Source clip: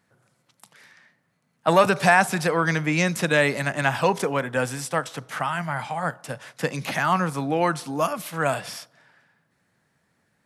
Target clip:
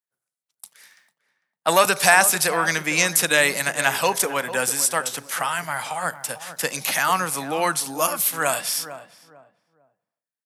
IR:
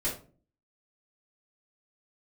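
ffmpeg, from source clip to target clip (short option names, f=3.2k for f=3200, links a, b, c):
-filter_complex "[0:a]agate=range=-33dB:threshold=-47dB:ratio=3:detection=peak,aemphasis=mode=production:type=riaa,asplit=2[a][b];[b]adelay=449,lowpass=f=970:p=1,volume=-11dB,asplit=2[c][d];[d]adelay=449,lowpass=f=970:p=1,volume=0.3,asplit=2[e][f];[f]adelay=449,lowpass=f=970:p=1,volume=0.3[g];[a][c][e][g]amix=inputs=4:normalize=0,volume=1dB"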